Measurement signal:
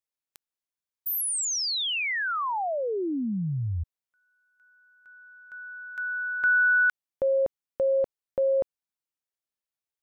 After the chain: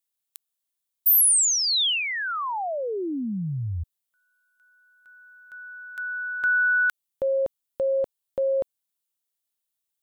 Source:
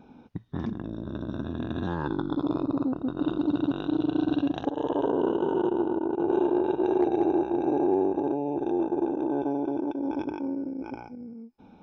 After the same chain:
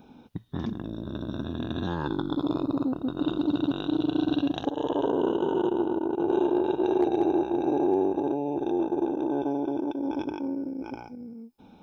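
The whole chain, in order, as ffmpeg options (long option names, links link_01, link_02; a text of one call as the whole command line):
ffmpeg -i in.wav -af "aexciter=amount=2.9:drive=0.9:freq=3000" out.wav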